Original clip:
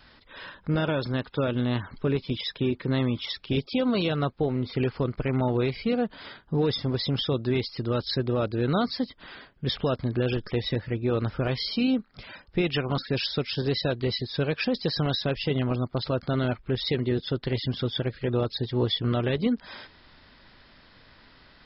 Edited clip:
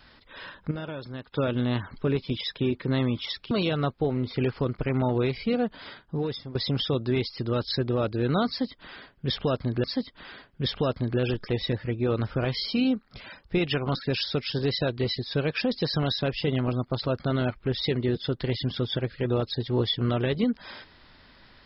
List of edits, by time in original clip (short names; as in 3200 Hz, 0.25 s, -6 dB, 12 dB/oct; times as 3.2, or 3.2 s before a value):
0.71–1.32 gain -9.5 dB
3.51–3.9 cut
6.27–6.94 fade out, to -14.5 dB
8.87–10.23 loop, 2 plays